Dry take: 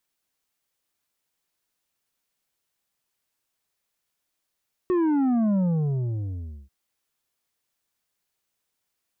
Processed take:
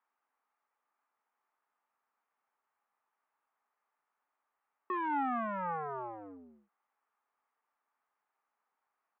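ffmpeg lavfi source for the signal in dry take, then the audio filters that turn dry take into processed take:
-f lavfi -i "aevalsrc='0.1*clip((1.79-t)/1.13,0,1)*tanh(2.24*sin(2*PI*370*1.79/log(65/370)*(exp(log(65/370)*t/1.79)-1)))/tanh(2.24)':duration=1.79:sample_rate=44100"
-af "aresample=8000,asoftclip=type=hard:threshold=-31.5dB,aresample=44100,highpass=frequency=270:width=0.5412,highpass=frequency=270:width=1.3066,equalizer=frequency=330:width_type=q:width=4:gain=-9,equalizer=frequency=530:width_type=q:width=4:gain=-4,equalizer=frequency=850:width_type=q:width=4:gain=9,equalizer=frequency=1200:width_type=q:width=4:gain=9,lowpass=frequency=2000:width=0.5412,lowpass=frequency=2000:width=1.3066"

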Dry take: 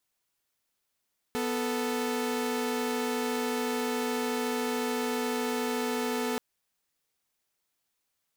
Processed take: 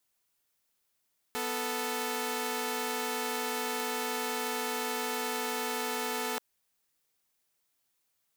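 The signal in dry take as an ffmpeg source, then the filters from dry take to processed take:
-f lavfi -i "aevalsrc='0.0376*((2*mod(246.94*t,1)-1)+(2*mod(440*t,1)-1))':duration=5.03:sample_rate=44100"
-filter_complex "[0:a]highshelf=frequency=8400:gain=4.5,acrossover=split=530|1900[link_01][link_02][link_03];[link_01]alimiter=level_in=14.5dB:limit=-24dB:level=0:latency=1,volume=-14.5dB[link_04];[link_04][link_02][link_03]amix=inputs=3:normalize=0"

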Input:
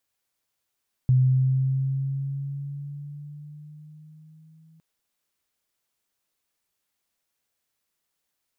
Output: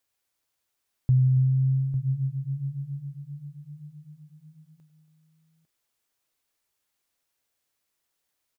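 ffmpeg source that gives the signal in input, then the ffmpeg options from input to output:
-f lavfi -i "aevalsrc='pow(10,(-14.5-37.5*t/3.71)/20)*sin(2*PI*128*3.71/(4*log(2)/12)*(exp(4*log(2)/12*t/3.71)-1))':duration=3.71:sample_rate=44100"
-filter_complex "[0:a]equalizer=frequency=190:width=4.5:gain=-6.5,asplit=2[link_01][link_02];[link_02]aecho=0:1:99|191|280|851:0.126|0.1|0.15|0.282[link_03];[link_01][link_03]amix=inputs=2:normalize=0"

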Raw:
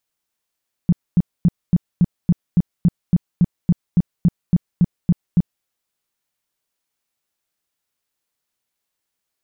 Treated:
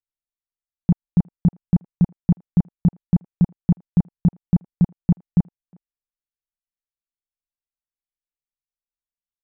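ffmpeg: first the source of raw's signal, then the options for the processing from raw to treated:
-f lavfi -i "aevalsrc='0.355*sin(2*PI*174*mod(t,0.28))*lt(mod(t,0.28),6/174)':duration=4.76:sample_rate=44100"
-filter_complex "[0:a]anlmdn=2.51,equalizer=frequency=820:width_type=o:width=0.54:gain=7.5,asplit=2[link_01][link_02];[link_02]adelay=360,highpass=300,lowpass=3400,asoftclip=type=hard:threshold=-19dB,volume=-24dB[link_03];[link_01][link_03]amix=inputs=2:normalize=0"

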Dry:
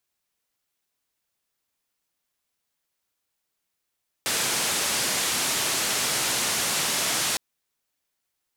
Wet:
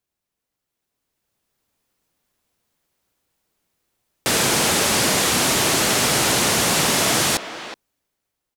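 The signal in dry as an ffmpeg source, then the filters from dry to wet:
-f lavfi -i "anoisesrc=color=white:duration=3.11:sample_rate=44100:seed=1,highpass=frequency=110,lowpass=frequency=9600,volume=-17.1dB"
-filter_complex "[0:a]tiltshelf=frequency=750:gain=5,dynaudnorm=framelen=340:gausssize=7:maxgain=10dB,asplit=2[link_01][link_02];[link_02]adelay=370,highpass=300,lowpass=3400,asoftclip=type=hard:threshold=-18dB,volume=-10dB[link_03];[link_01][link_03]amix=inputs=2:normalize=0"

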